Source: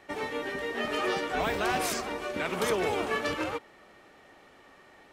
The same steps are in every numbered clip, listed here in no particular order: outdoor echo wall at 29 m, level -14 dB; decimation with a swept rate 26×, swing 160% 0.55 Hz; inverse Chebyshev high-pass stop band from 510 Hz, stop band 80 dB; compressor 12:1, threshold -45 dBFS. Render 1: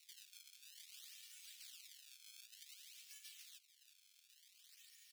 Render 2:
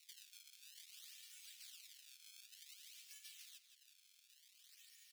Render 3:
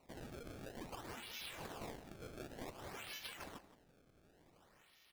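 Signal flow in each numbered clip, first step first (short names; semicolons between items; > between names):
compressor > outdoor echo > decimation with a swept rate > inverse Chebyshev high-pass; decimation with a swept rate > outdoor echo > compressor > inverse Chebyshev high-pass; inverse Chebyshev high-pass > decimation with a swept rate > compressor > outdoor echo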